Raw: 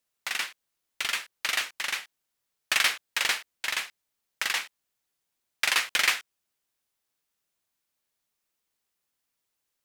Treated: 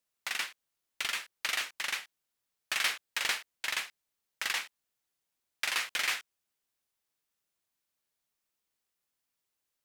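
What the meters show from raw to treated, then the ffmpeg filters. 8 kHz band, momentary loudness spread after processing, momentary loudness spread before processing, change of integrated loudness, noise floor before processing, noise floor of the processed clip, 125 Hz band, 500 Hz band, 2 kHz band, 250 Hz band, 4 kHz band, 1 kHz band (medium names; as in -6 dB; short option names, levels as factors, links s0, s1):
-5.5 dB, 7 LU, 9 LU, -5.5 dB, -82 dBFS, -85 dBFS, no reading, -5.5 dB, -5.5 dB, -5.5 dB, -5.5 dB, -5.5 dB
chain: -af "alimiter=limit=0.188:level=0:latency=1:release=34,volume=0.668"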